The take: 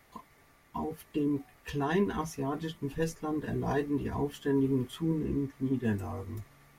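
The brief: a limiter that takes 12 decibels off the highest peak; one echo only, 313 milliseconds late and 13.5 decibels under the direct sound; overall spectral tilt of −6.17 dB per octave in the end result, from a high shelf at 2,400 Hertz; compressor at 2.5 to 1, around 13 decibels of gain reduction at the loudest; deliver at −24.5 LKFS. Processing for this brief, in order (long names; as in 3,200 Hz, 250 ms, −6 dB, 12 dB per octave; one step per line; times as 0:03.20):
high-shelf EQ 2,400 Hz −4 dB
downward compressor 2.5 to 1, threshold −45 dBFS
brickwall limiter −42.5 dBFS
single-tap delay 313 ms −13.5 dB
level +26.5 dB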